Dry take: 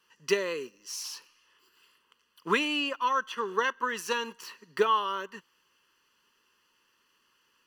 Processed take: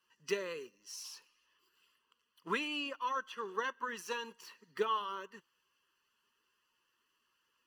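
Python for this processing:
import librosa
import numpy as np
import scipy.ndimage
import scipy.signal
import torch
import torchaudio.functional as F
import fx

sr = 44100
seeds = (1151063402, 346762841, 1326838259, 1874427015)

y = fx.spec_quant(x, sr, step_db=15)
y = F.gain(torch.from_numpy(y), -8.5).numpy()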